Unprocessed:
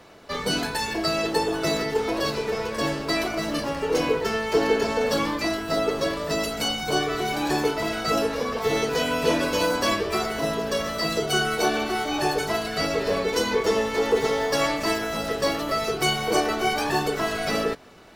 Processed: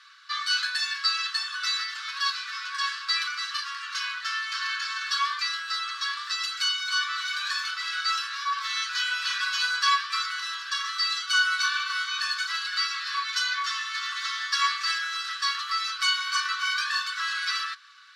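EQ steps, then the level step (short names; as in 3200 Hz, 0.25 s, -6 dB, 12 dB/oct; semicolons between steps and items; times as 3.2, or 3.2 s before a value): rippled Chebyshev high-pass 1100 Hz, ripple 9 dB; air absorption 63 m; +7.5 dB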